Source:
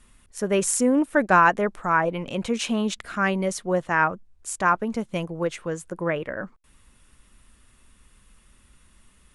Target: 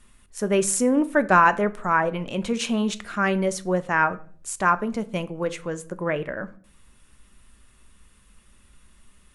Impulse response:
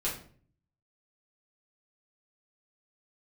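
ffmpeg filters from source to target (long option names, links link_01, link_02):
-filter_complex "[0:a]asplit=2[link_01][link_02];[1:a]atrim=start_sample=2205,adelay=5[link_03];[link_02][link_03]afir=irnorm=-1:irlink=0,volume=-17.5dB[link_04];[link_01][link_04]amix=inputs=2:normalize=0"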